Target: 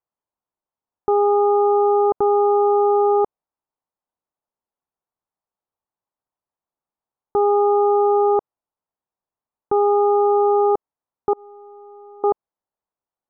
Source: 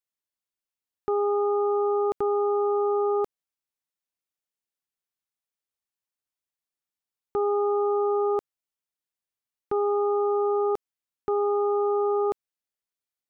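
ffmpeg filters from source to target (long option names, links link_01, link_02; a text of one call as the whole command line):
ffmpeg -i in.wav -filter_complex "[0:a]asettb=1/sr,asplit=3[link_01][link_02][link_03];[link_01]atrim=end=11.334[link_04];[link_02]atrim=start=11.33:end=12.24,asetpts=PTS-STARTPTS,afade=type=in:duration=0.004:curve=qsin,afade=type=out:start_time=0.906:duration=0.004:curve=qsin,agate=range=-33dB:threshold=-20dB:ratio=16:detection=peak[link_05];[link_03]atrim=start=12.236[link_06];[link_04][link_05]acrossfade=duration=0.004:curve1=hsin:curve2=qsin[link_07];[link_07][link_06]acrossfade=duration=0.004:curve1=qsin:curve2=hsin,lowpass=frequency=930:width_type=q:width=2,volume=5.5dB" out.wav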